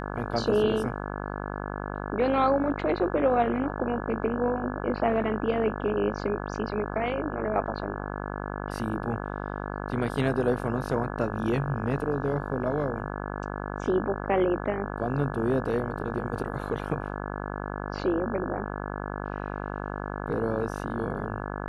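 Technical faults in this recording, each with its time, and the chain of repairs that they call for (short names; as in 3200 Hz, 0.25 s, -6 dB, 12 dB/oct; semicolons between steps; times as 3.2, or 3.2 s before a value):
buzz 50 Hz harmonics 34 -34 dBFS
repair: de-hum 50 Hz, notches 34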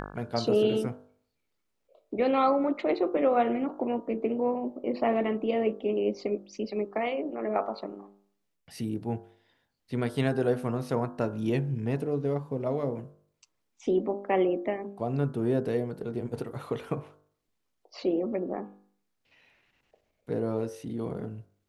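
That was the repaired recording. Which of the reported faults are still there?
none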